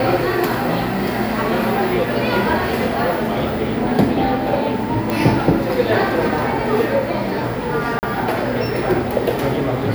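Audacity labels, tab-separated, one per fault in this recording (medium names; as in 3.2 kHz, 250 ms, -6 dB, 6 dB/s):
5.100000	5.100000	pop
7.990000	8.030000	dropout 39 ms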